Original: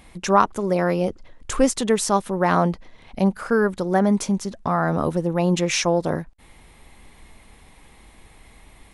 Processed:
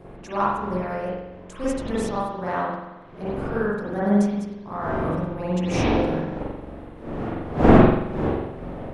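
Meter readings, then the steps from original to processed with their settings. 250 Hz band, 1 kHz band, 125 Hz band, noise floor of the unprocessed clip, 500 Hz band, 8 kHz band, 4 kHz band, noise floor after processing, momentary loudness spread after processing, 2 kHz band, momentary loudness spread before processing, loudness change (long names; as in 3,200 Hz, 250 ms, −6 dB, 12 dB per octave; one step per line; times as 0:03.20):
+0.5 dB, −2.5 dB, +1.0 dB, −50 dBFS, −1.5 dB, −14.5 dB, −8.0 dB, −42 dBFS, 15 LU, −3.0 dB, 6 LU, −2.0 dB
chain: wind on the microphone 430 Hz −22 dBFS
spring reverb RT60 1.2 s, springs 44 ms, chirp 55 ms, DRR −8.5 dB
expander for the loud parts 1.5 to 1, over −17 dBFS
level −9.5 dB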